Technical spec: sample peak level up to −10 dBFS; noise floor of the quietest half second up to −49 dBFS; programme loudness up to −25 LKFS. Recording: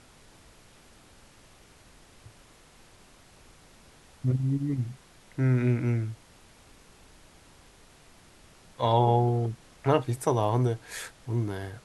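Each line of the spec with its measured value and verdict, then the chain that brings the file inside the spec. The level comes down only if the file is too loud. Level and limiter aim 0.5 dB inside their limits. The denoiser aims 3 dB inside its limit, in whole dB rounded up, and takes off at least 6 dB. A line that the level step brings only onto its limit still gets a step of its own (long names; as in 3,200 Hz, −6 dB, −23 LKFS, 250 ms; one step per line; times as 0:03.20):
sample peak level −9.0 dBFS: out of spec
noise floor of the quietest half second −55 dBFS: in spec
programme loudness −27.5 LKFS: in spec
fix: brickwall limiter −10.5 dBFS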